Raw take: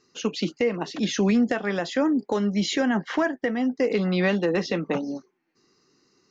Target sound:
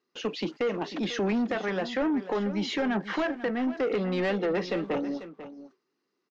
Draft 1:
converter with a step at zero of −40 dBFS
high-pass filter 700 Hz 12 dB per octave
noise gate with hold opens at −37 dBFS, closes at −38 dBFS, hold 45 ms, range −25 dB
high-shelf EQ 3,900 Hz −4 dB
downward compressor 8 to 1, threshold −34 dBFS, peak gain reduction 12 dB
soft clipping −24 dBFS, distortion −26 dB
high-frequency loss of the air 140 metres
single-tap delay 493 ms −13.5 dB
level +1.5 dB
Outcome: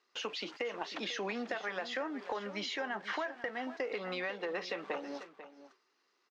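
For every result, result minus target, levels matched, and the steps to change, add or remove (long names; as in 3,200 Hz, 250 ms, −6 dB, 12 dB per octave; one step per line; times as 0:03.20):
downward compressor: peak gain reduction +12 dB; 250 Hz band −6.5 dB; converter with a step at zero: distortion +9 dB
remove: downward compressor 8 to 1, threshold −34 dBFS, peak gain reduction 12 dB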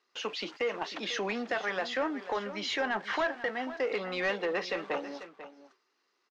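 250 Hz band −7.5 dB; converter with a step at zero: distortion +9 dB
change: high-pass filter 250 Hz 12 dB per octave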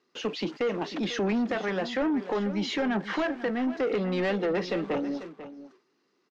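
converter with a step at zero: distortion +9 dB
change: converter with a step at zero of −49 dBFS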